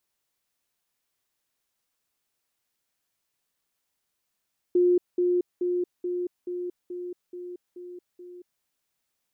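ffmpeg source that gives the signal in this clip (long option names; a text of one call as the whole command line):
ffmpeg -f lavfi -i "aevalsrc='pow(10,(-17-3*floor(t/0.43))/20)*sin(2*PI*356*t)*clip(min(mod(t,0.43),0.23-mod(t,0.43))/0.005,0,1)':duration=3.87:sample_rate=44100" out.wav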